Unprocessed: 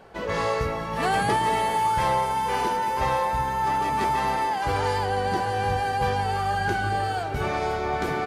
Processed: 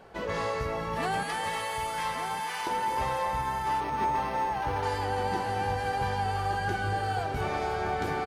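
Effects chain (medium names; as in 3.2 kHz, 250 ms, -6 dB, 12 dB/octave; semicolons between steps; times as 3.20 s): 1.23–2.67 s: high-pass 1.3 kHz 12 dB/octave; compression 2:1, threshold -27 dBFS, peak gain reduction 4.5 dB; delay 1171 ms -8.5 dB; on a send at -11 dB: reverberation, pre-delay 241 ms; 3.80–4.83 s: on the sum: decimation joined by straight lines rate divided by 6×; trim -2.5 dB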